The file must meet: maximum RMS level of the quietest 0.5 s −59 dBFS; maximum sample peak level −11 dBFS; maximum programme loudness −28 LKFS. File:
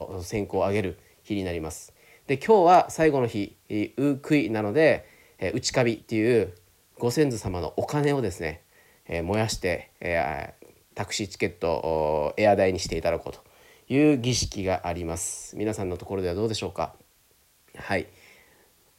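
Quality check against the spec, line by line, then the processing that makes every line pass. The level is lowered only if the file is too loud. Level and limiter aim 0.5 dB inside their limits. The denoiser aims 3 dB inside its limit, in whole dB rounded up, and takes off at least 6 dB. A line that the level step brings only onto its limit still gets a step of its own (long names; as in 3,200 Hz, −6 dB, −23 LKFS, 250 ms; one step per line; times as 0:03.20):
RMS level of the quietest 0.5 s −62 dBFS: in spec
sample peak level −7.0 dBFS: out of spec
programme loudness −25.5 LKFS: out of spec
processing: level −3 dB
brickwall limiter −11.5 dBFS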